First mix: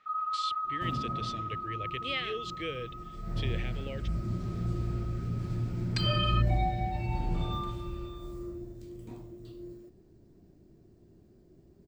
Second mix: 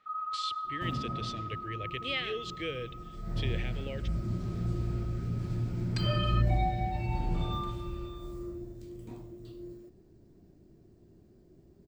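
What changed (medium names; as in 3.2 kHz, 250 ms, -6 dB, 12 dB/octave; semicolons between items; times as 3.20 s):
speech: send on; first sound: add peaking EQ 3.1 kHz -5.5 dB 2.9 oct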